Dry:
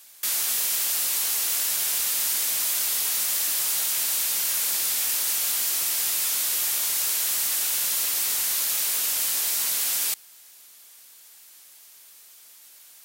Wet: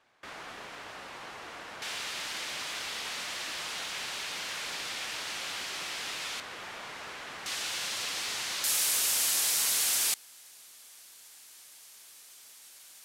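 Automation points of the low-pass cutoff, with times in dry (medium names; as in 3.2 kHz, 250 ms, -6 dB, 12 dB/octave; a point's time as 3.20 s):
1.4 kHz
from 1.82 s 3.2 kHz
from 6.40 s 1.7 kHz
from 7.46 s 4.3 kHz
from 8.64 s 11 kHz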